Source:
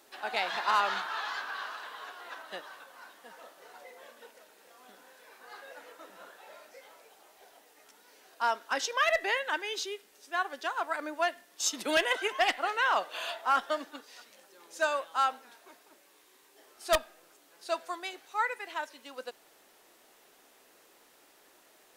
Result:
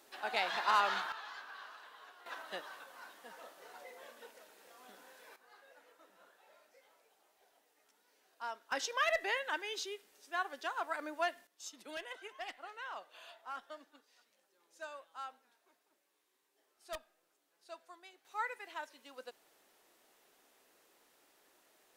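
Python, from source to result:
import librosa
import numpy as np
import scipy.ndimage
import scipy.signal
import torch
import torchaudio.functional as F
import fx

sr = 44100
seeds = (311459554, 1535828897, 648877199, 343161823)

y = fx.gain(x, sr, db=fx.steps((0.0, -3.0), (1.12, -12.0), (2.26, -2.0), (5.36, -13.5), (8.72, -5.5), (11.47, -18.0), (18.25, -8.0)))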